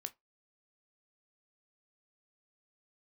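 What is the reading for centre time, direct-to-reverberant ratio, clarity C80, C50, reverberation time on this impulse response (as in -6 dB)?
3 ms, 9.0 dB, 33.5 dB, 23.5 dB, 0.20 s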